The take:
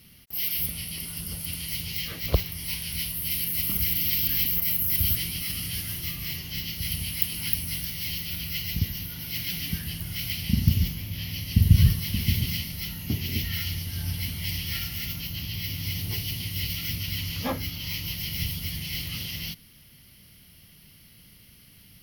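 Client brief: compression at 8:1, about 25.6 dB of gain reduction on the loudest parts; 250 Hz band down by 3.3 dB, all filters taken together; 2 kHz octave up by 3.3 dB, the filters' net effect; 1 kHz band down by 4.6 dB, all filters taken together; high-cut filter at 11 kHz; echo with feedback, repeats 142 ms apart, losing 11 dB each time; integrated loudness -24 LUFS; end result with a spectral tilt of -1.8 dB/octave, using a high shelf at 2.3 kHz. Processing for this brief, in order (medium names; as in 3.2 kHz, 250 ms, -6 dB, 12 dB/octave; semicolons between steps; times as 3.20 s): low-pass 11 kHz; peaking EQ 250 Hz -5.5 dB; peaking EQ 1 kHz -7.5 dB; peaking EQ 2 kHz +3 dB; treble shelf 2.3 kHz +4 dB; compression 8:1, threshold -40 dBFS; feedback delay 142 ms, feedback 28%, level -11 dB; trim +17.5 dB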